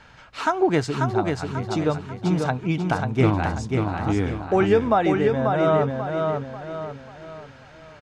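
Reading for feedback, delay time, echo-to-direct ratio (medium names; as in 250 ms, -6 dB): 41%, 540 ms, -3.5 dB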